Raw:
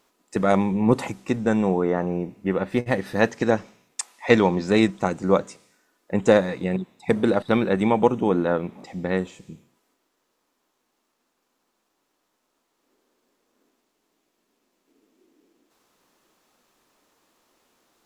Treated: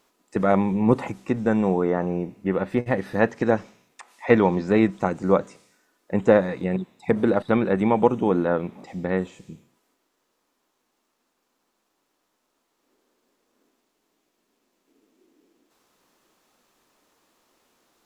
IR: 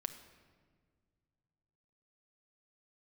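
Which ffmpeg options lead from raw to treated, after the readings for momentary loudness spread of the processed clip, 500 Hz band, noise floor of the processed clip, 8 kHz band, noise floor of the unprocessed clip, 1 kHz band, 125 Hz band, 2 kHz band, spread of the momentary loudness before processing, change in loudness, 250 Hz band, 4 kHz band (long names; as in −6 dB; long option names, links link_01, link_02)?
9 LU, 0.0 dB, −74 dBFS, below −10 dB, −74 dBFS, 0.0 dB, 0.0 dB, −2.0 dB, 10 LU, 0.0 dB, 0.0 dB, can't be measured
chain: -filter_complex "[0:a]acrossover=split=2500[link_01][link_02];[link_02]acompressor=threshold=-49dB:ratio=4:attack=1:release=60[link_03];[link_01][link_03]amix=inputs=2:normalize=0"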